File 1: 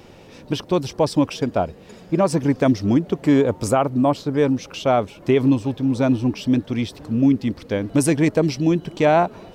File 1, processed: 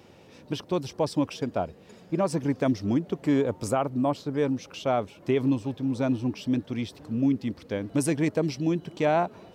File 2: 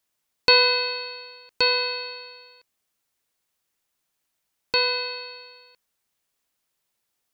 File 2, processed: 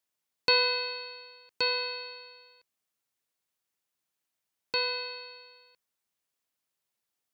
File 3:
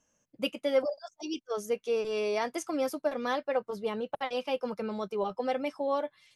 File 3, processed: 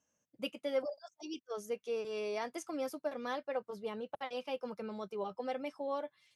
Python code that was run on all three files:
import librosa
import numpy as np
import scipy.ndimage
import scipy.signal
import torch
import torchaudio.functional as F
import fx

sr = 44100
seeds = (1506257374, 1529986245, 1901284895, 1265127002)

y = scipy.signal.sosfilt(scipy.signal.butter(2, 67.0, 'highpass', fs=sr, output='sos'), x)
y = y * librosa.db_to_amplitude(-7.5)